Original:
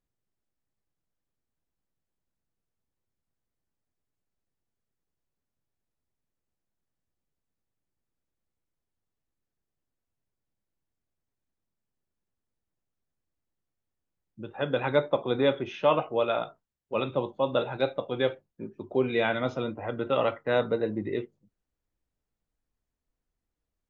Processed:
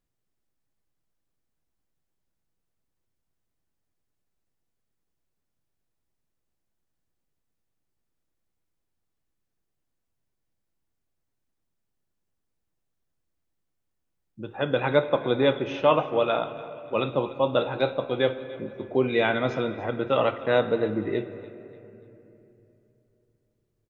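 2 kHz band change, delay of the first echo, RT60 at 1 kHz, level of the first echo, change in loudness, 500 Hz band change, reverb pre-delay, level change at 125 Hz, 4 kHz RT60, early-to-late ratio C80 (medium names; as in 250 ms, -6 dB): +3.5 dB, 291 ms, 2.7 s, -18.0 dB, +3.0 dB, +3.0 dB, 3 ms, +3.5 dB, 1.7 s, 12.0 dB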